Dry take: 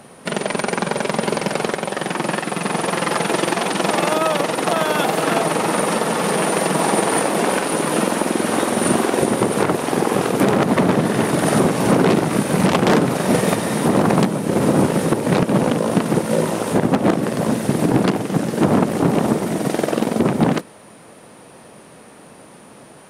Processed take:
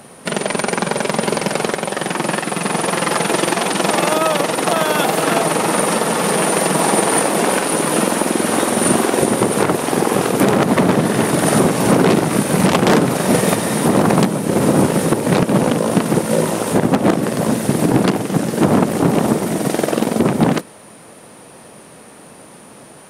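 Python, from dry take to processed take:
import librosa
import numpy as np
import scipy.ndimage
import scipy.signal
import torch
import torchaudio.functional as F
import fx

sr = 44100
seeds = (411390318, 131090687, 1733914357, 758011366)

y = fx.high_shelf(x, sr, hz=6800.0, db=5.5)
y = F.gain(torch.from_numpy(y), 2.0).numpy()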